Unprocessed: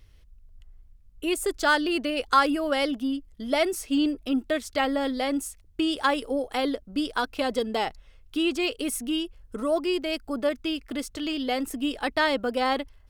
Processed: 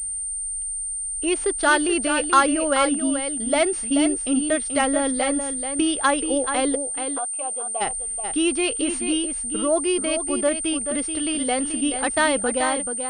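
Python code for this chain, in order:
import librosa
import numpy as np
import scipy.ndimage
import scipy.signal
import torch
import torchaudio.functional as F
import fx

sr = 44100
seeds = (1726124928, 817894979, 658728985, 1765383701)

y = fx.fade_out_tail(x, sr, length_s=0.6)
y = fx.vowel_filter(y, sr, vowel='a', at=(6.75, 7.8), fade=0.02)
y = y + 10.0 ** (-8.0 / 20.0) * np.pad(y, (int(432 * sr / 1000.0), 0))[:len(y)]
y = fx.pwm(y, sr, carrier_hz=8900.0)
y = y * 10.0 ** (3.5 / 20.0)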